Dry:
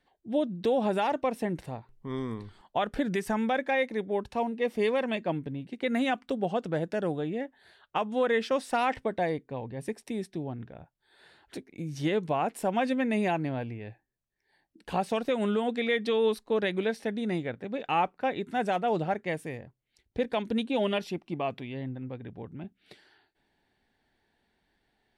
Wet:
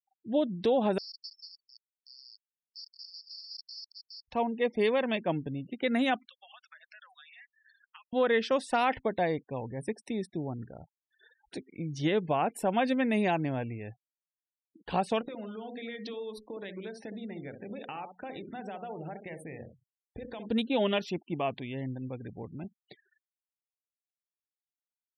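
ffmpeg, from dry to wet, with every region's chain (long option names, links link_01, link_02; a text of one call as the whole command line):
ffmpeg -i in.wav -filter_complex "[0:a]asettb=1/sr,asplit=3[link_01][link_02][link_03];[link_01]atrim=end=0.984[link_04];[link_02]atrim=start=0.98:end=4.28,asetpts=PTS-STARTPTS,afade=type=in:duration=0.004:curve=qsin,afade=type=out:start_time=3.296:duration=0.004:curve=qsin,aeval=exprs='(mod(28.2*val(0)+1,2)-1)/28.2':channel_layout=same,asuperpass=centerf=4900:order=8:qfactor=4.6[link_05];[link_03]atrim=start=4.276[link_06];[link_04][link_05]acrossfade=duration=0.004:curve1=hsin:curve2=qsin[link_07];[link_07][link_06]acrossfade=duration=0.004:curve1=qsin:curve2=hsin,asettb=1/sr,asplit=3[link_08][link_09][link_10];[link_08]atrim=end=6.284[link_11];[link_09]atrim=start=6.28:end=8.13,asetpts=PTS-STARTPTS,afade=type=in:duration=0.004:curve=qsin,afade=type=out:start_time=1.846:duration=0.004:curve=qsin,highpass=frequency=1300:width=0.5412,highpass=frequency=1300:width=1.3066,highshelf=frequency=9500:gain=9.5,acompressor=threshold=-48dB:ratio=8:attack=3.2:release=140:knee=1:detection=peak[link_12];[link_10]atrim=start=8.126[link_13];[link_11][link_12]acrossfade=duration=0.004:curve1=hsin:curve2=qsin[link_14];[link_14][link_13]acrossfade=duration=0.004:curve1=qsin:curve2=hsin,asettb=1/sr,asplit=3[link_15][link_16][link_17];[link_15]atrim=end=15.214[link_18];[link_16]atrim=start=15.21:end=20.49,asetpts=PTS-STARTPTS,afade=type=in:duration=0.004:curve=qsin,afade=type=out:start_time=5.276:duration=0.004:curve=qsin,acompressor=threshold=-36dB:ratio=16:attack=3.2:release=140:knee=1:detection=peak,bandreject=frequency=60:width_type=h:width=6,bandreject=frequency=120:width_type=h:width=6,bandreject=frequency=180:width_type=h:width=6,bandreject=frequency=240:width_type=h:width=6,bandreject=frequency=300:width_type=h:width=6,bandreject=frequency=360:width_type=h:width=6,bandreject=frequency=420:width_type=h:width=6,bandreject=frequency=480:width_type=h:width=6,bandreject=frequency=540:width_type=h:width=6,asplit=2[link_19][link_20];[link_20]adelay=65,lowpass=frequency=860:poles=1,volume=-6dB,asplit=2[link_21][link_22];[link_22]adelay=65,lowpass=frequency=860:poles=1,volume=0.15,asplit=2[link_23][link_24];[link_24]adelay=65,lowpass=frequency=860:poles=1,volume=0.15[link_25];[link_19][link_21][link_23][link_25]amix=inputs=4:normalize=0,atrim=end_sample=232848[link_26];[link_17]atrim=start=20.486[link_27];[link_18][link_26]acrossfade=duration=0.004:curve1=hsin:curve2=qsin[link_28];[link_28][link_27]acrossfade=duration=0.004:curve1=qsin:curve2=hsin,afftfilt=real='re*gte(hypot(re,im),0.00398)':imag='im*gte(hypot(re,im),0.00398)':win_size=1024:overlap=0.75,equalizer=frequency=3600:width_type=o:width=0.77:gain=2" out.wav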